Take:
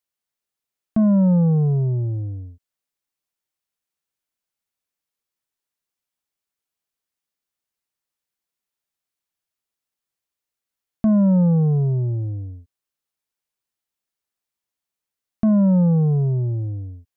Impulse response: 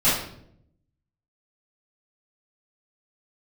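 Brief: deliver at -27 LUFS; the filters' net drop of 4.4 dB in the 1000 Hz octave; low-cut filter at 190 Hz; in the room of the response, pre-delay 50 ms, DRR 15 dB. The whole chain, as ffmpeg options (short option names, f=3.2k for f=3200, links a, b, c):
-filter_complex "[0:a]highpass=190,equalizer=f=1k:t=o:g=-5.5,asplit=2[a][b];[1:a]atrim=start_sample=2205,adelay=50[c];[b][c]afir=irnorm=-1:irlink=0,volume=-32dB[d];[a][d]amix=inputs=2:normalize=0,volume=-5dB"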